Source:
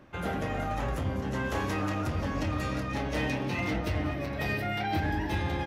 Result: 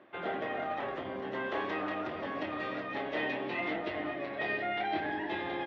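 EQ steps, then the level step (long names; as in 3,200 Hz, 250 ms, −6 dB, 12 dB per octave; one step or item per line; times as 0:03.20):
loudspeaker in its box 280–3,800 Hz, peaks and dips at 370 Hz +8 dB, 670 Hz +7 dB, 1,100 Hz +3 dB, 1,900 Hz +6 dB, 3,400 Hz +5 dB
−5.0 dB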